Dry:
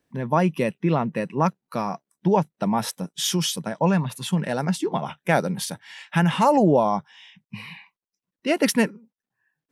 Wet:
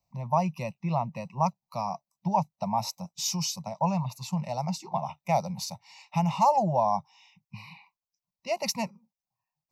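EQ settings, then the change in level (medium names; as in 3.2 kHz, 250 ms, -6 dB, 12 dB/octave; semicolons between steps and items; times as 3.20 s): static phaser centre 700 Hz, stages 4; static phaser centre 2.2 kHz, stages 8; 0.0 dB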